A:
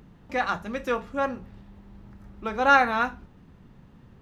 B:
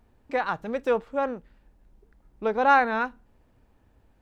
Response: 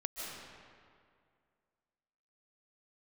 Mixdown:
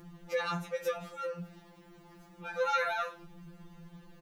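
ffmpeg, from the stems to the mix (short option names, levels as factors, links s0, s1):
-filter_complex "[0:a]volume=1.26[s0];[1:a]acompressor=threshold=0.0158:ratio=2,alimiter=level_in=1.06:limit=0.0631:level=0:latency=1:release=424,volume=0.944,adelay=0.4,volume=0.531,asplit=2[s1][s2];[s2]apad=whole_len=185935[s3];[s0][s3]sidechaincompress=threshold=0.00447:ratio=8:attack=20:release=120[s4];[s4][s1]amix=inputs=2:normalize=0,highshelf=f=4700:g=9.5,afftfilt=real='re*2.83*eq(mod(b,8),0)':imag='im*2.83*eq(mod(b,8),0)':win_size=2048:overlap=0.75"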